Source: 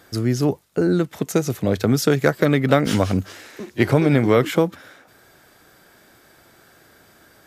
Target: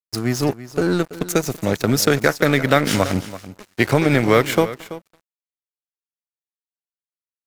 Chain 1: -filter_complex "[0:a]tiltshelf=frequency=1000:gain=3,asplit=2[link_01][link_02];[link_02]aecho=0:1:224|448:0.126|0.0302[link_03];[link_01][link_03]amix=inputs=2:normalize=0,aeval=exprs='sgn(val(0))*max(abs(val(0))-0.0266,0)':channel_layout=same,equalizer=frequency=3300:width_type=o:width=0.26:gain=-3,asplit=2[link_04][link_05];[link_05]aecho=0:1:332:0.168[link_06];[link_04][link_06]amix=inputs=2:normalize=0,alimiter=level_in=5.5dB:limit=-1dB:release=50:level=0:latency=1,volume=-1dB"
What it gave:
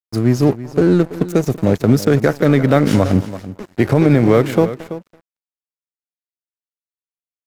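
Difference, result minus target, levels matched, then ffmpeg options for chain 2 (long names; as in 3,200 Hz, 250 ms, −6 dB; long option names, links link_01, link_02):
1,000 Hz band −5.0 dB
-filter_complex "[0:a]tiltshelf=frequency=1000:gain=-4,asplit=2[link_01][link_02];[link_02]aecho=0:1:224|448:0.126|0.0302[link_03];[link_01][link_03]amix=inputs=2:normalize=0,aeval=exprs='sgn(val(0))*max(abs(val(0))-0.0266,0)':channel_layout=same,equalizer=frequency=3300:width_type=o:width=0.26:gain=-3,asplit=2[link_04][link_05];[link_05]aecho=0:1:332:0.168[link_06];[link_04][link_06]amix=inputs=2:normalize=0,alimiter=level_in=5.5dB:limit=-1dB:release=50:level=0:latency=1,volume=-1dB"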